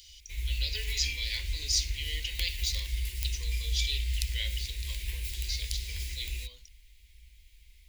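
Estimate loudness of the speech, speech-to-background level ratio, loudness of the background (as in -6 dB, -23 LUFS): -34.5 LUFS, 1.0 dB, -35.5 LUFS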